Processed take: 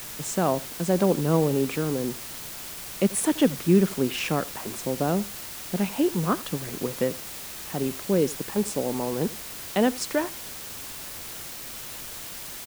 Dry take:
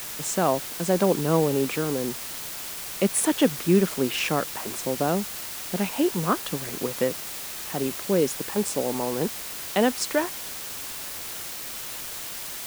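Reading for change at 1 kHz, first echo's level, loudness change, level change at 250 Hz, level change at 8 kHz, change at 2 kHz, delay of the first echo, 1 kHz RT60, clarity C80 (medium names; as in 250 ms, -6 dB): -2.0 dB, -20.0 dB, -1.0 dB, +1.0 dB, -3.0 dB, -3.0 dB, 83 ms, no reverb, no reverb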